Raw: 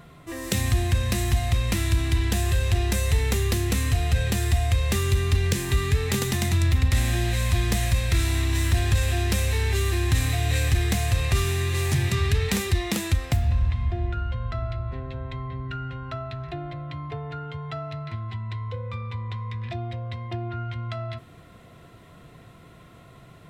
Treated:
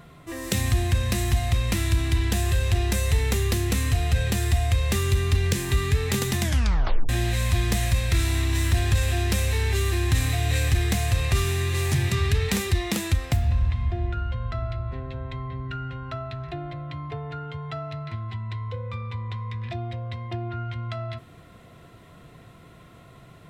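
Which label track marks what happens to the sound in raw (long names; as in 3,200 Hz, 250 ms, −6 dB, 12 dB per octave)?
6.420000	6.420000	tape stop 0.67 s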